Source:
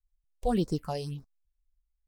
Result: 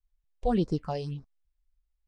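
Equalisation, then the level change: air absorption 120 m; +1.5 dB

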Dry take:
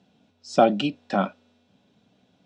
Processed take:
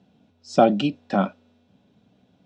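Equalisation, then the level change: dynamic EQ 6300 Hz, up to +4 dB, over -44 dBFS, Q 0.77; tilt -1.5 dB/oct; 0.0 dB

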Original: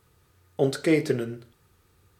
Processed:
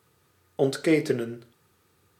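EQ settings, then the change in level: HPF 130 Hz 12 dB/oct; 0.0 dB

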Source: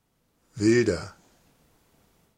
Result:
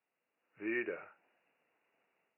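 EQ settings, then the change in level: HPF 730 Hz 12 dB/oct; brick-wall FIR low-pass 2900 Hz; bell 1100 Hz -9 dB 1.5 oct; -3.0 dB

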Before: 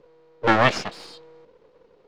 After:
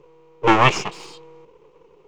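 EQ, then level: ripple EQ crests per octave 0.72, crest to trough 10 dB; +2.5 dB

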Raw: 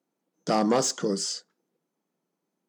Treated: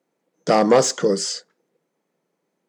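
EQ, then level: graphic EQ 125/500/1000/2000/4000/8000 Hz +8/+10/+3/+9/+3/+4 dB; 0.0 dB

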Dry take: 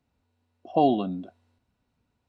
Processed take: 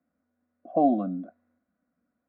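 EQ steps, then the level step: BPF 150–3900 Hz; air absorption 440 m; fixed phaser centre 600 Hz, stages 8; +3.0 dB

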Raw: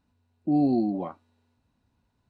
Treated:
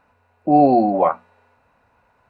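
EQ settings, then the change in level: band shelf 730 Hz +15 dB; band shelf 1900 Hz +13.5 dB 1.2 oct; notches 60/120/180/240 Hz; +5.0 dB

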